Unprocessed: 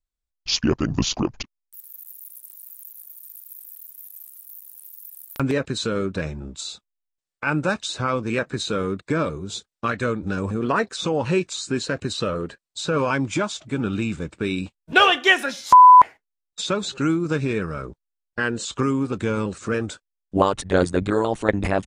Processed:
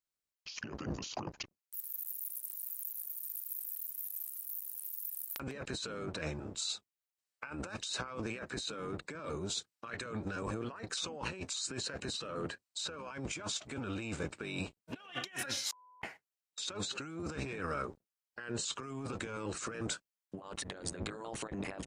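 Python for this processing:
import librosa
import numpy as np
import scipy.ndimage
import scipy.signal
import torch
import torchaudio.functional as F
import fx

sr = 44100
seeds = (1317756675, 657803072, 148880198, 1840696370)

y = fx.octave_divider(x, sr, octaves=1, level_db=3.0)
y = fx.highpass(y, sr, hz=690.0, slope=6)
y = fx.notch(y, sr, hz=3500.0, q=17.0)
y = fx.over_compress(y, sr, threshold_db=-35.0, ratio=-1.0)
y = y * 10.0 ** (-8.0 / 20.0)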